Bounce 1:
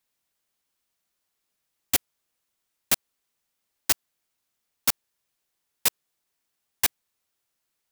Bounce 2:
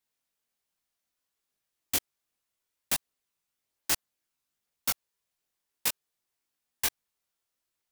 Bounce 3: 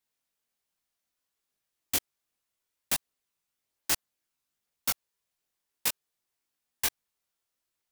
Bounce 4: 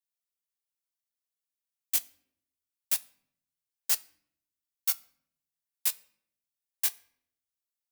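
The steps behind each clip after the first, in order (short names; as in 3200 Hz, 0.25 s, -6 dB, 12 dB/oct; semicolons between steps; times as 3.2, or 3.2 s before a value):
chorus voices 2, 0.64 Hz, delay 21 ms, depth 2.3 ms; gain -2 dB
nothing audible
tilt +3 dB/oct; shoebox room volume 140 m³, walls mixed, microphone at 0.33 m; upward expander 1.5:1, over -32 dBFS; gain -8.5 dB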